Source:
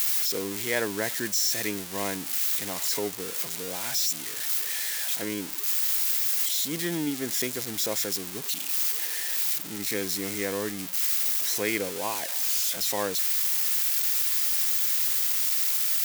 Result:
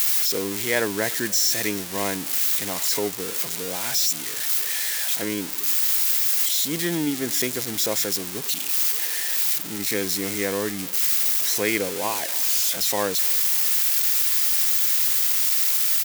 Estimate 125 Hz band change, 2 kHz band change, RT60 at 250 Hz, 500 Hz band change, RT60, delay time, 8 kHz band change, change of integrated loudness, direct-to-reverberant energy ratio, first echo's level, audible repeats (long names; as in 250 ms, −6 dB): +4.5 dB, +4.5 dB, no reverb audible, +4.5 dB, no reverb audible, 296 ms, +4.5 dB, +4.5 dB, no reverb audible, −22.5 dB, 2